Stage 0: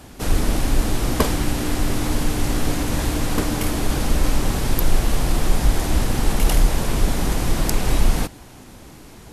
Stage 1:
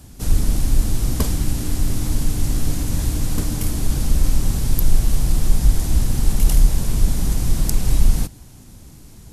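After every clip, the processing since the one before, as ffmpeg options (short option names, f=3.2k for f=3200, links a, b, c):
-af "bass=f=250:g=13,treble=f=4k:g=11,volume=-10dB"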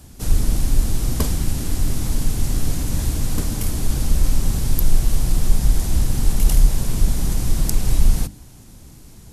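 -af "bandreject=f=50:t=h:w=6,bandreject=f=100:t=h:w=6,bandreject=f=150:t=h:w=6,bandreject=f=200:t=h:w=6,bandreject=f=250:t=h:w=6,bandreject=f=300:t=h:w=6"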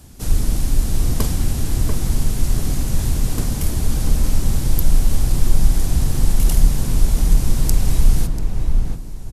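-filter_complex "[0:a]asplit=2[a][b];[b]adelay=690,lowpass=f=1.5k:p=1,volume=-3dB,asplit=2[c][d];[d]adelay=690,lowpass=f=1.5k:p=1,volume=0.31,asplit=2[e][f];[f]adelay=690,lowpass=f=1.5k:p=1,volume=0.31,asplit=2[g][h];[h]adelay=690,lowpass=f=1.5k:p=1,volume=0.31[i];[a][c][e][g][i]amix=inputs=5:normalize=0"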